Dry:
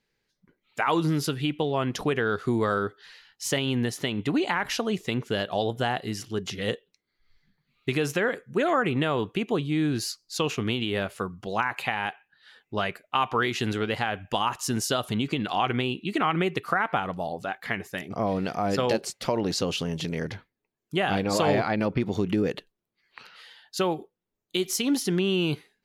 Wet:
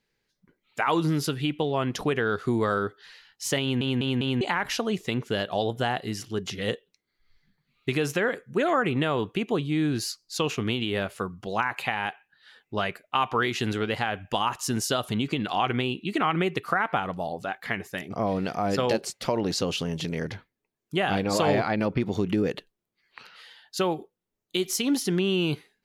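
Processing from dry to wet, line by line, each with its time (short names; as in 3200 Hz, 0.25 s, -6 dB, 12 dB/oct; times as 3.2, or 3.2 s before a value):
3.61 stutter in place 0.20 s, 4 plays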